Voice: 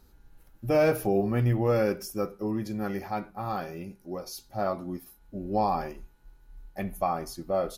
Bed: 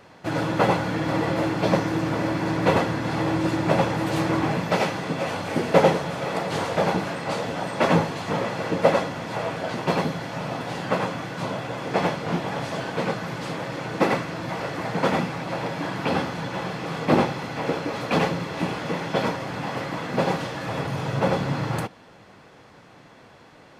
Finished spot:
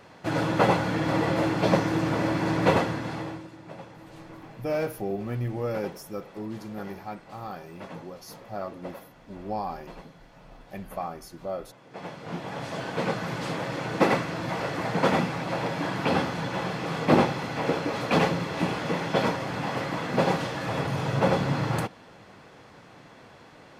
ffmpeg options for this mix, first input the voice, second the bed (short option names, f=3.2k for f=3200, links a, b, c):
-filter_complex "[0:a]adelay=3950,volume=-5.5dB[a];[1:a]volume=20.5dB,afade=t=out:st=2.67:d=0.8:silence=0.0891251,afade=t=in:st=11.9:d=1.39:silence=0.0841395[b];[a][b]amix=inputs=2:normalize=0"